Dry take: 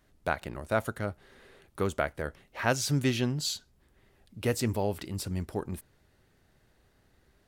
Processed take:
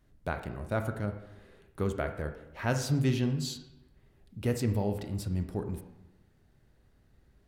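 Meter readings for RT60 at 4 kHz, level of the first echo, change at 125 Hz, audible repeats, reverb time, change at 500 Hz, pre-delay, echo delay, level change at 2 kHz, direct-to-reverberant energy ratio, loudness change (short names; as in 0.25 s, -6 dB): 0.70 s, none, +2.0 dB, none, 0.95 s, -2.5 dB, 22 ms, none, -5.5 dB, 6.5 dB, -1.0 dB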